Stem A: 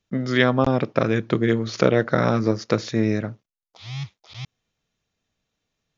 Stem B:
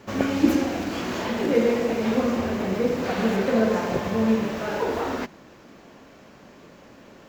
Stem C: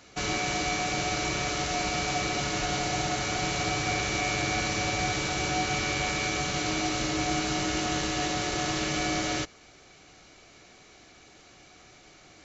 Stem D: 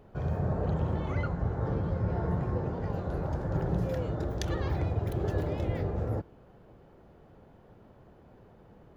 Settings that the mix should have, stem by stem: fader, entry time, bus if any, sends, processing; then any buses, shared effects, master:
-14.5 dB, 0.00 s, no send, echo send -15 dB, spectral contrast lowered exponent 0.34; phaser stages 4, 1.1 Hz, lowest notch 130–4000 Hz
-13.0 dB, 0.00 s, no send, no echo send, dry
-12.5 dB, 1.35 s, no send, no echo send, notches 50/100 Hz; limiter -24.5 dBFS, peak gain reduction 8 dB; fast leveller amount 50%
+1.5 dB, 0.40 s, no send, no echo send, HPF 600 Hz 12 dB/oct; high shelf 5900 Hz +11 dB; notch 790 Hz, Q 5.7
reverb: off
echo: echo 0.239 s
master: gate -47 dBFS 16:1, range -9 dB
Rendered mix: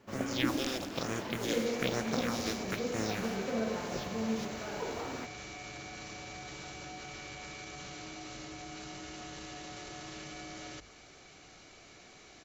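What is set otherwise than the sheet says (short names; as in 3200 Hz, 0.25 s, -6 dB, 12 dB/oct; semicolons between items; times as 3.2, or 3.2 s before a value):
stem D: muted; master: missing gate -47 dBFS 16:1, range -9 dB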